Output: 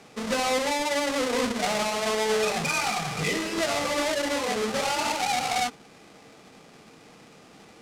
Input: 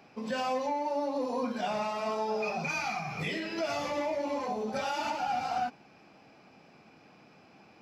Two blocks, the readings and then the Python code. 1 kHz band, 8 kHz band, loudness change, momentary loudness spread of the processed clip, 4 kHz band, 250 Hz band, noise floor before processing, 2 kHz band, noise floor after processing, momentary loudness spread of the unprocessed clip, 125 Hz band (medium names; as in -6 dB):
+4.0 dB, +17.0 dB, +6.5 dB, 3 LU, +12.5 dB, +5.0 dB, -58 dBFS, +9.0 dB, -52 dBFS, 3 LU, +6.0 dB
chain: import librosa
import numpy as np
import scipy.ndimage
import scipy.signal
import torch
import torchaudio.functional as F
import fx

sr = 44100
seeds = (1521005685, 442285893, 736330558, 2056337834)

y = fx.halfwave_hold(x, sr)
y = scipy.signal.sosfilt(scipy.signal.butter(2, 8000.0, 'lowpass', fs=sr, output='sos'), y)
y = fx.high_shelf(y, sr, hz=2700.0, db=7.5)
y = fx.small_body(y, sr, hz=(460.0, 1200.0, 2000.0), ring_ms=45, db=7)